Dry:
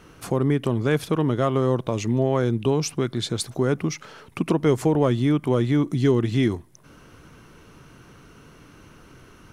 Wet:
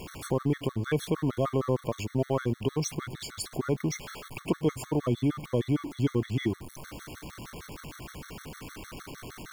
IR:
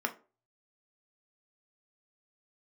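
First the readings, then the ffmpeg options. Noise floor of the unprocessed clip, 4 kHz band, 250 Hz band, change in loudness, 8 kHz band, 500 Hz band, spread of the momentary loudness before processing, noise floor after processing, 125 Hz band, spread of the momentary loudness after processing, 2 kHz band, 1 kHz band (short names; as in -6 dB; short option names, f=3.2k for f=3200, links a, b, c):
-50 dBFS, -6.5 dB, -7.5 dB, -7.5 dB, -4.0 dB, -8.0 dB, 7 LU, -52 dBFS, -7.0 dB, 15 LU, -6.0 dB, -7.5 dB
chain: -af "aeval=exprs='val(0)+0.5*0.0282*sgn(val(0))':c=same,aeval=exprs='val(0)+0.00447*(sin(2*PI*60*n/s)+sin(2*PI*2*60*n/s)/2+sin(2*PI*3*60*n/s)/3+sin(2*PI*4*60*n/s)/4+sin(2*PI*5*60*n/s)/5)':c=same,afftfilt=real='re*gt(sin(2*PI*6.5*pts/sr)*(1-2*mod(floor(b*sr/1024/1100),2)),0)':imag='im*gt(sin(2*PI*6.5*pts/sr)*(1-2*mod(floor(b*sr/1024/1100),2)),0)':win_size=1024:overlap=0.75,volume=-5dB"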